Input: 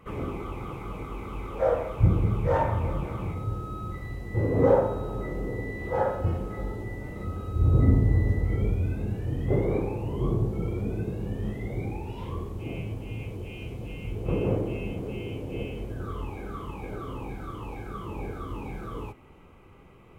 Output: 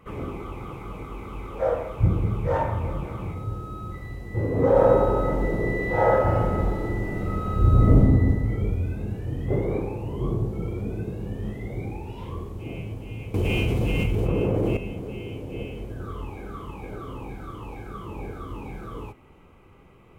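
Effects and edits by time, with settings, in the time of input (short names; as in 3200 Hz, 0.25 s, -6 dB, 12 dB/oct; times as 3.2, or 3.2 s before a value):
4.71–7.98 reverb throw, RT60 1.7 s, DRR -6.5 dB
13.34–14.77 fast leveller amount 100%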